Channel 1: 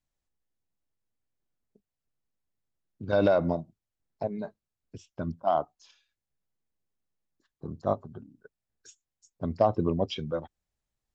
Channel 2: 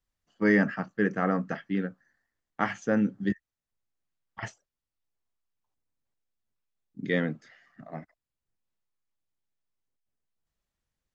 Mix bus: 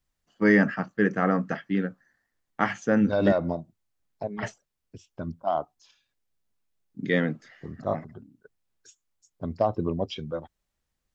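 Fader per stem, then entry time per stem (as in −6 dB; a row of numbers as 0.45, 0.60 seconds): −1.0, +3.0 decibels; 0.00, 0.00 seconds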